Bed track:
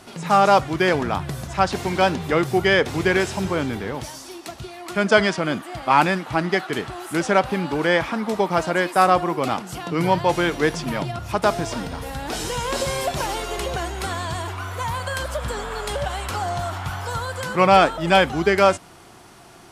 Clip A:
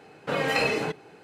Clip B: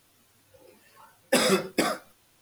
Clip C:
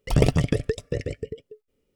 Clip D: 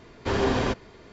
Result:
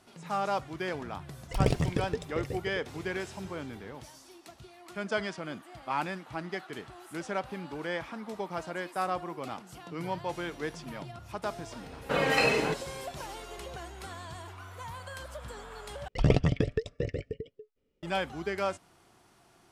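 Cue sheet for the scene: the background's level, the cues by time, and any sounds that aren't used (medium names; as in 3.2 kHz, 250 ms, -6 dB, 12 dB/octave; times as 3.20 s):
bed track -15.5 dB
1.44 s: add C -7.5 dB
11.82 s: add A -0.5 dB
16.08 s: replace with C -4.5 dB + low-pass 4.8 kHz
not used: B, D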